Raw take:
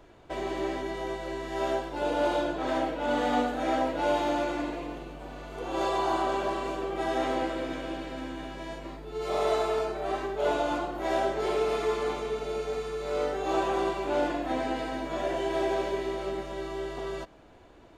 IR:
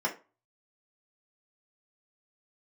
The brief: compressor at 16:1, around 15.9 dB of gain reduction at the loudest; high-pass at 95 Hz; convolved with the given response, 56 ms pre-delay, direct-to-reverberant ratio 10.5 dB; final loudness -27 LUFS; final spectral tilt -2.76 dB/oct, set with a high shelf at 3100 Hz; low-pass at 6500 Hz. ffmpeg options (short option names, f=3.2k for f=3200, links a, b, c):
-filter_complex "[0:a]highpass=95,lowpass=6.5k,highshelf=f=3.1k:g=5.5,acompressor=threshold=-38dB:ratio=16,asplit=2[a][b];[1:a]atrim=start_sample=2205,adelay=56[c];[b][c]afir=irnorm=-1:irlink=0,volume=-19dB[d];[a][d]amix=inputs=2:normalize=0,volume=15dB"